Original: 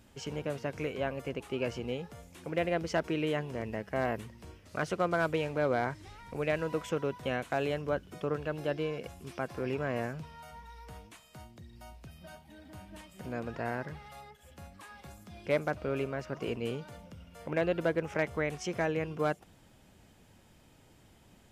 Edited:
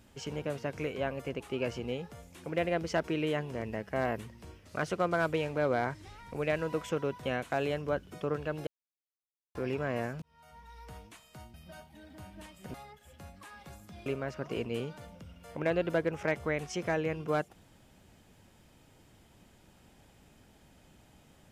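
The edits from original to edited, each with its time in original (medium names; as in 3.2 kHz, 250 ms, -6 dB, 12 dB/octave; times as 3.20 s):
8.67–9.55 s: mute
10.22–10.83 s: fade in
11.54–12.09 s: delete
13.29–14.12 s: delete
15.44–15.97 s: delete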